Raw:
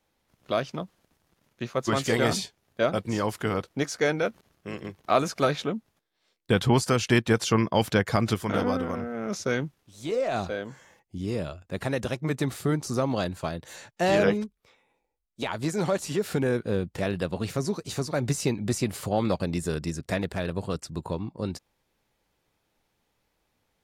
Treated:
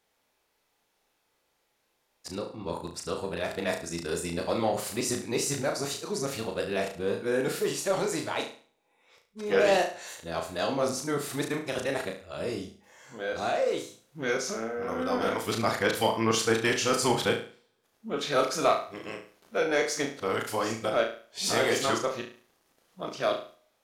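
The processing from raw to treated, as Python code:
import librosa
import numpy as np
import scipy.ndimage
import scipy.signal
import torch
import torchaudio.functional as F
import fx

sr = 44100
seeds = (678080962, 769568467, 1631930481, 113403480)

p1 = np.flip(x).copy()
p2 = fx.bass_treble(p1, sr, bass_db=-12, treble_db=2)
p3 = 10.0 ** (-22.5 / 20.0) * np.tanh(p2 / 10.0 ** (-22.5 / 20.0))
p4 = p2 + F.gain(torch.from_numpy(p3), -5.0).numpy()
p5 = fx.room_flutter(p4, sr, wall_m=6.1, rt60_s=0.41)
p6 = fx.rev_double_slope(p5, sr, seeds[0], early_s=0.41, late_s=2.1, knee_db=-26, drr_db=18.5)
y = F.gain(torch.from_numpy(p6), -4.0).numpy()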